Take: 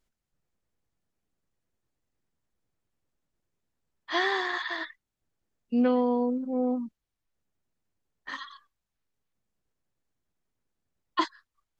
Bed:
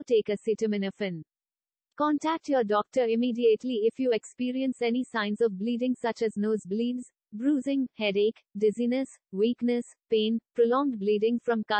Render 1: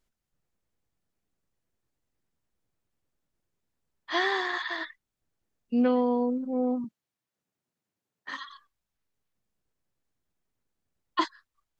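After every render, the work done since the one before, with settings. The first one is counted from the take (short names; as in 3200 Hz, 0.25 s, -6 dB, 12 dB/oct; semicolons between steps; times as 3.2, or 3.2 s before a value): 6.84–8.49 HPF 120 Hz 24 dB/oct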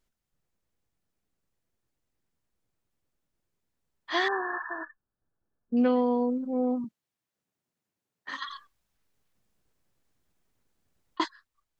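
4.28–5.77 brick-wall FIR low-pass 1800 Hz; 8.42–11.2 negative-ratio compressor -36 dBFS, ratio -0.5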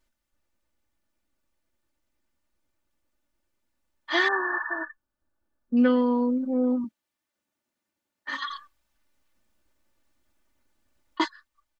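bell 1500 Hz +3.5 dB 2.5 oct; comb 3.4 ms, depth 75%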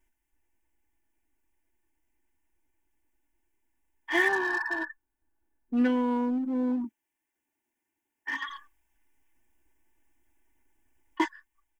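fixed phaser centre 850 Hz, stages 8; in parallel at -10.5 dB: wavefolder -31 dBFS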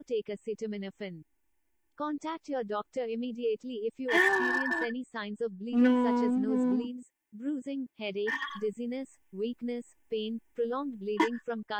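add bed -8.5 dB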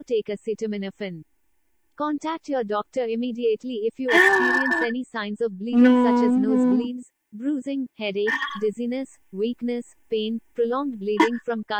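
gain +8.5 dB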